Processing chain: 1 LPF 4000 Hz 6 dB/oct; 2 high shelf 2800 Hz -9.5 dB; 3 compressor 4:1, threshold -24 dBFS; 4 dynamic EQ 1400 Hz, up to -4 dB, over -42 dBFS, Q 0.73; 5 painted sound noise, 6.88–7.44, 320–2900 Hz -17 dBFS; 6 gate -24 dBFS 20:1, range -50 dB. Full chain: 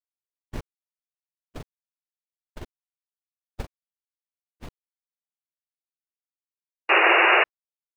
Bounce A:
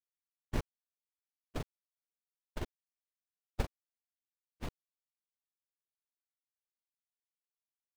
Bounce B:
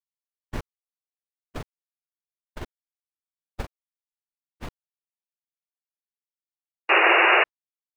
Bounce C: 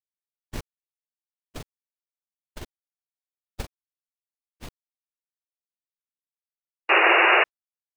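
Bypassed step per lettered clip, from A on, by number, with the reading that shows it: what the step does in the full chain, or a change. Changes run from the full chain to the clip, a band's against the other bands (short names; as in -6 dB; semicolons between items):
5, 125 Hz band +22.5 dB; 4, 8 kHz band +2.5 dB; 2, 8 kHz band +8.0 dB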